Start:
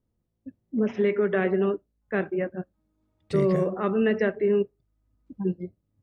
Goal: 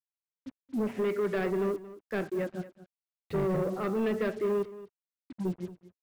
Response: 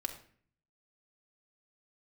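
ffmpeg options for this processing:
-af "lowpass=2900,aresample=11025,asoftclip=type=tanh:threshold=-21.5dB,aresample=44100,acrusher=bits=7:mix=0:aa=0.5,aecho=1:1:227:0.15,volume=-2.5dB"

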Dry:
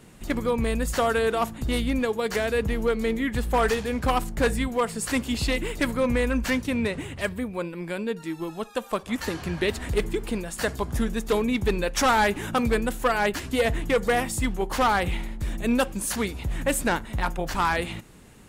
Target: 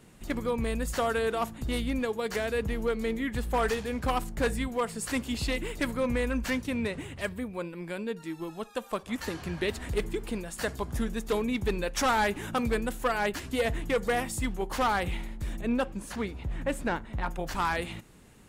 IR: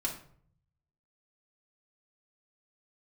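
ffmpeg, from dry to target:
-filter_complex "[0:a]asettb=1/sr,asplit=3[link_01][link_02][link_03];[link_01]atrim=end=15.614[link_04];[link_02]atrim=start=15.61:end=17.31,asetpts=PTS-STARTPTS,afade=type=in:duration=0.004:curve=qsin,afade=type=out:start_time=1.696:duration=0.004:curve=qsin,lowpass=frequency=2200:poles=1[link_05];[link_03]atrim=start=17.306[link_06];[link_04][link_05]acrossfade=duration=0.004:curve1=hsin:curve2=qsin[link_07];[link_07][link_06]acrossfade=duration=0.004:curve1=qsin:curve2=hsin,volume=-5dB"

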